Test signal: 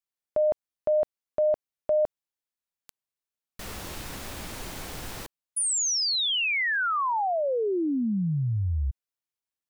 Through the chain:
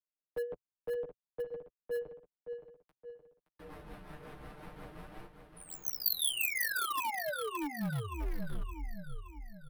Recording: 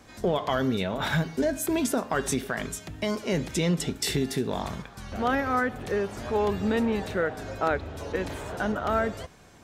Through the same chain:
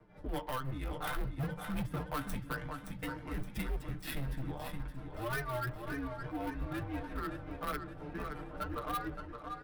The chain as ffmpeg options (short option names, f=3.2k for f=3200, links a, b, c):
-filter_complex "[0:a]highpass=82,acrossover=split=370|800|7200[a][b][c][d];[b]acompressor=threshold=-44dB:ratio=12:attack=0.3[e];[a][e][c][d]amix=inputs=4:normalize=0,tremolo=f=5.6:d=0.45,aecho=1:1:6.8:0.76,flanger=delay=8.3:depth=7.1:regen=7:speed=0.57:shape=triangular,adynamicsmooth=sensitivity=3:basefreq=1.3k,aecho=1:1:570|1140|1710|2280|2850|3420:0.398|0.195|0.0956|0.0468|0.023|0.0112,volume=28.5dB,asoftclip=hard,volume=-28.5dB,aexciter=amount=5.2:drive=9:freq=9.7k,afreqshift=-130,volume=-3dB"